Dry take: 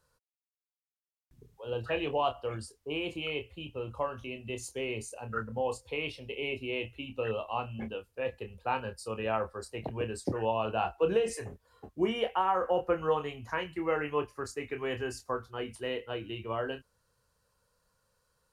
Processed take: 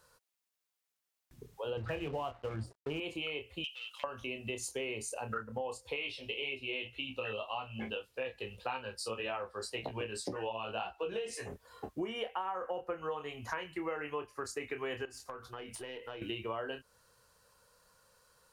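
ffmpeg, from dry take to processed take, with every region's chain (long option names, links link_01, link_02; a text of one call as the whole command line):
ffmpeg -i in.wav -filter_complex "[0:a]asettb=1/sr,asplit=3[link_01][link_02][link_03];[link_01]atrim=end=1.774[link_04];[link_02]atrim=start=1.77:end=3,asetpts=PTS-STARTPTS,afade=type=in:duration=0.004:curve=qsin,afade=type=out:start_time=1.226:duration=0.004:curve=qsin,bass=frequency=250:gain=15,treble=frequency=4000:gain=-12,bandreject=frequency=60:width_type=h:width=6,bandreject=frequency=120:width_type=h:width=6,bandreject=frequency=180:width_type=h:width=6,bandreject=frequency=240:width_type=h:width=6,bandreject=frequency=300:width_type=h:width=6,bandreject=frequency=360:width_type=h:width=6,aeval=exprs='sgn(val(0))*max(abs(val(0))-0.00422,0)':channel_layout=same[link_05];[link_03]atrim=start=2.996[link_06];[link_04][link_05]acrossfade=duration=0.004:curve1=hsin:curve2=qsin[link_07];[link_07][link_06]acrossfade=duration=0.004:curve1=qsin:curve2=hsin,asettb=1/sr,asplit=3[link_08][link_09][link_10];[link_08]atrim=end=3.644[link_11];[link_09]atrim=start=3.64:end=4.04,asetpts=PTS-STARTPTS,afade=type=in:duration=0.004:curve=qsin,afade=type=out:start_time=0.396:duration=0.004:curve=qsin,acompressor=threshold=-38dB:ratio=12:attack=3.2:release=140:knee=1:detection=peak,asoftclip=type=hard:threshold=-38.5dB,highpass=frequency=3000:width_type=q:width=4.3[link_12];[link_10]atrim=start=4.036[link_13];[link_11][link_12]acrossfade=duration=0.004:curve1=hsin:curve2=qsin[link_14];[link_14][link_13]acrossfade=duration=0.004:curve1=qsin:curve2=hsin,asettb=1/sr,asplit=3[link_15][link_16][link_17];[link_15]atrim=end=5.964[link_18];[link_16]atrim=start=5.96:end=11.48,asetpts=PTS-STARTPTS,afade=type=in:duration=0.004:curve=qsin,afade=type=out:start_time=5.516:duration=0.004:curve=qsin,equalizer=frequency=3600:width_type=o:width=1.3:gain=7.5,flanger=delay=15:depth=4.6:speed=1.8[link_19];[link_17]atrim=start=11.476[link_20];[link_18][link_19]acrossfade=duration=0.004:curve1=hsin:curve2=qsin[link_21];[link_21][link_20]acrossfade=duration=0.004:curve1=qsin:curve2=hsin,asettb=1/sr,asplit=3[link_22][link_23][link_24];[link_22]atrim=end=15.054[link_25];[link_23]atrim=start=15.05:end=16.22,asetpts=PTS-STARTPTS,afade=type=in:duration=0.004:curve=qsin,afade=type=out:start_time=1.166:duration=0.004:curve=qsin,acompressor=threshold=-45dB:ratio=16:attack=3.2:release=140:knee=1:detection=peak,aeval=exprs='(tanh(63.1*val(0)+0.5)-tanh(0.5))/63.1':channel_layout=same,asplit=2[link_26][link_27];[link_27]adelay=15,volume=-13.5dB[link_28];[link_26][link_28]amix=inputs=2:normalize=0,atrim=end_sample=51597[link_29];[link_24]atrim=start=16.216[link_30];[link_25][link_29]acrossfade=duration=0.004:curve1=hsin:curve2=qsin[link_31];[link_31][link_30]acrossfade=duration=0.004:curve1=qsin:curve2=hsin,lowshelf=frequency=250:gain=-9,acompressor=threshold=-45dB:ratio=6,volume=9dB" out.wav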